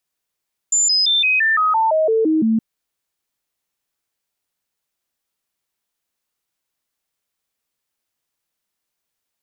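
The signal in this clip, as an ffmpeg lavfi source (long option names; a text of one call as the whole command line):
ffmpeg -f lavfi -i "aevalsrc='0.224*clip(min(mod(t,0.17),0.17-mod(t,0.17))/0.005,0,1)*sin(2*PI*7130*pow(2,-floor(t/0.17)/2)*mod(t,0.17))':duration=1.87:sample_rate=44100" out.wav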